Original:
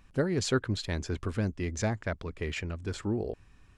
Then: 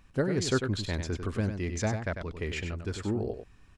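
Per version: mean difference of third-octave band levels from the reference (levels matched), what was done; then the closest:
3.5 dB: single-tap delay 97 ms −7.5 dB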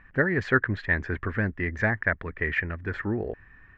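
5.0 dB: low-pass with resonance 1,800 Hz, resonance Q 7.5
level +2 dB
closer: first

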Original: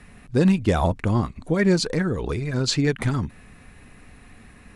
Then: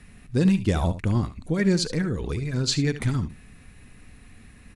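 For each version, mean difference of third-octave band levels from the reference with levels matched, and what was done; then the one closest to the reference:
2.5 dB: parametric band 810 Hz −7.5 dB 2.6 octaves
on a send: single-tap delay 72 ms −13.5 dB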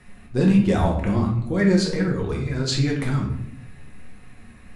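4.5 dB: rectangular room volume 160 cubic metres, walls mixed, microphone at 1 metre
flanger 1.4 Hz, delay 7 ms, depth 8.8 ms, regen +66%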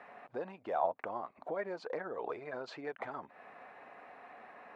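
9.5 dB: downward compressor 6 to 1, threshold −32 dBFS, peak gain reduction 17 dB
four-pole ladder band-pass 810 Hz, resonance 45%
level +14 dB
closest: first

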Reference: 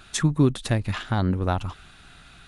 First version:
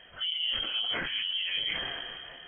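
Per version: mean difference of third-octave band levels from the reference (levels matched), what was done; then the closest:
15.5 dB: random phases in long frames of 100 ms
reversed playback
downward compressor 5 to 1, threshold −32 dBFS, peak gain reduction 17 dB
reversed playback
voice inversion scrambler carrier 3,200 Hz
level that may fall only so fast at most 24 dB per second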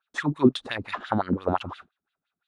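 9.5 dB: parametric band 81 Hz +3.5 dB 0.71 octaves
noise gate −42 dBFS, range −35 dB
drawn EQ curve 150 Hz 0 dB, 1,200 Hz +7 dB, 2,600 Hz +1 dB, 3,900 Hz +4 dB
auto-filter band-pass sine 5.8 Hz 220–3,500 Hz
level +5.5 dB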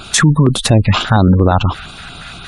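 5.0 dB: gate on every frequency bin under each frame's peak −30 dB strong
low-shelf EQ 72 Hz −8.5 dB
auto-filter notch square 4.3 Hz 330–1,800 Hz
boost into a limiter +21 dB
level −1 dB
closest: third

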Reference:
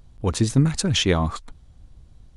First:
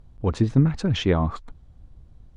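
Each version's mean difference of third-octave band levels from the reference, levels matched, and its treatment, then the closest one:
4.0 dB: high-shelf EQ 2,500 Hz −11.5 dB
treble cut that deepens with the level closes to 3,000 Hz, closed at −16 dBFS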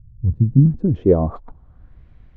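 12.5 dB: notch filter 830 Hz, Q 20
low-pass filter sweep 120 Hz → 2,100 Hz, 0:00.26–0:02.03
level +2 dB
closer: first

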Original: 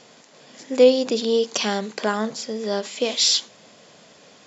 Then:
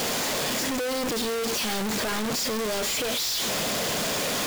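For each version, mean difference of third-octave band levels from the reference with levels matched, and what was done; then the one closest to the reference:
16.0 dB: sign of each sample alone
level −4 dB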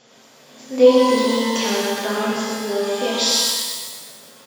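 8.5 dB: on a send: repeating echo 124 ms, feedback 47%, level −4.5 dB
on the sum: reverb with rising layers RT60 1.3 s, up +12 semitones, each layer −8 dB, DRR −4.5 dB
level −5.5 dB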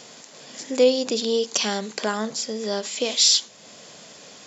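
2.0 dB: high-shelf EQ 5,500 Hz +11.5 dB
in parallel at +2 dB: downward compressor, threshold −34 dBFS, peak gain reduction 23 dB
on the sum: level −4.5 dB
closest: third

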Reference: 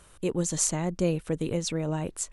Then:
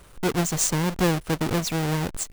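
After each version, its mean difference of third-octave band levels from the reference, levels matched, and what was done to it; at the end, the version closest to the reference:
9.0 dB: each half-wave held at its own peak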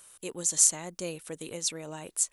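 6.0 dB: RIAA equalisation recording
level −6 dB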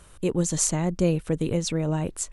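1.0 dB: low-shelf EQ 200 Hz +4.5 dB
level +2 dB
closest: third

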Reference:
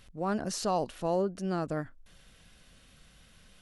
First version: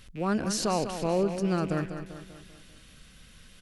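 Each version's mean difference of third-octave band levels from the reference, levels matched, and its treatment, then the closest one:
4.5 dB: loose part that buzzes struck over −48 dBFS, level −43 dBFS
parametric band 730 Hz −6 dB 1.1 octaves
repeating echo 196 ms, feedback 51%, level −9.5 dB
level +5 dB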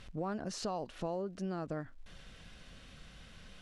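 6.0 dB: downward compressor 6 to 1, threshold −40 dBFS, peak gain reduction 14.5 dB
surface crackle 340 per second −66 dBFS
high-frequency loss of the air 67 metres
level +5 dB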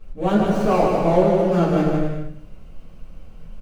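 8.5 dB: running median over 25 samples
on a send: bouncing-ball delay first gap 150 ms, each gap 0.7×, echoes 5
on the sum: rectangular room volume 52 cubic metres, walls mixed, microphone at 2.4 metres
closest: first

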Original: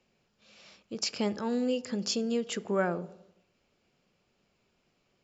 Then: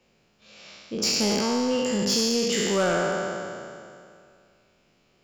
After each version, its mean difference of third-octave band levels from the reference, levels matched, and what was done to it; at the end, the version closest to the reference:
9.5 dB: peak hold with a decay on every bin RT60 2.31 s
soft clipping −21.5 dBFS, distortion −16 dB
level +5 dB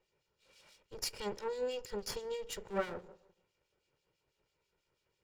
6.5 dB: lower of the sound and its delayed copy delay 2.1 ms
two-band tremolo in antiphase 6.1 Hz, crossover 2,300 Hz
level −3 dB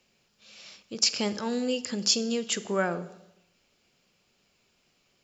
3.0 dB: high-shelf EQ 2,200 Hz +10.5 dB
four-comb reverb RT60 0.86 s, combs from 31 ms, DRR 16 dB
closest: third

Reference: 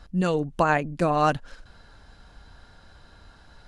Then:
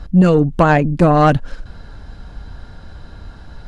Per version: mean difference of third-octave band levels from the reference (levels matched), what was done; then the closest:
3.0 dB: low-shelf EQ 450 Hz +10 dB
soft clipping −10 dBFS, distortion −16 dB
high-shelf EQ 7,800 Hz −5.5 dB
level +7.5 dB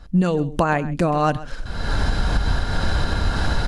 13.5 dB: camcorder AGC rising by 44 dB per second
low-shelf EQ 450 Hz +5 dB
single-tap delay 132 ms −17 dB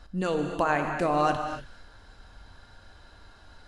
4.5 dB: parametric band 160 Hz −7 dB 0.52 octaves
in parallel at −2 dB: brickwall limiter −18.5 dBFS, peak gain reduction 10.5 dB
on the sum: reverb whose tail is shaped and stops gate 310 ms flat, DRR 4.5 dB
level −6.5 dB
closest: first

